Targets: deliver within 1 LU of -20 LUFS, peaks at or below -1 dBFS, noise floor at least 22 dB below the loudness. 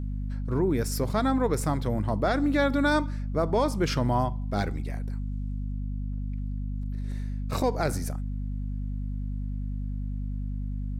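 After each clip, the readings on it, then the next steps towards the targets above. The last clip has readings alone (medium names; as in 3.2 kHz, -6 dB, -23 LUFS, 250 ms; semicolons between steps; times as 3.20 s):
hum 50 Hz; highest harmonic 250 Hz; hum level -29 dBFS; loudness -29.0 LUFS; peak level -13.5 dBFS; loudness target -20.0 LUFS
-> de-hum 50 Hz, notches 5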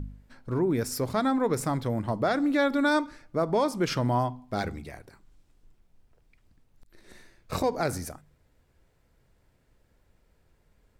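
hum not found; loudness -27.5 LUFS; peak level -14.5 dBFS; loudness target -20.0 LUFS
-> trim +7.5 dB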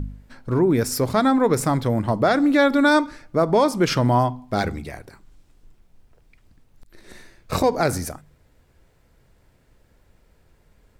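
loudness -20.0 LUFS; peak level -7.0 dBFS; noise floor -60 dBFS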